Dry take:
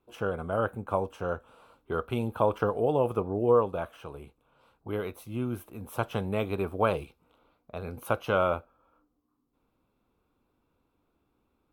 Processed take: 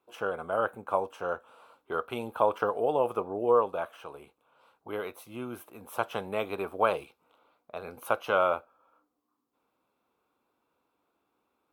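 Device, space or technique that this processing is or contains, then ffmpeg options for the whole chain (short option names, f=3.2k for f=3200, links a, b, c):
filter by subtraction: -filter_complex "[0:a]asplit=2[a][b];[b]lowpass=800,volume=-1[c];[a][c]amix=inputs=2:normalize=0"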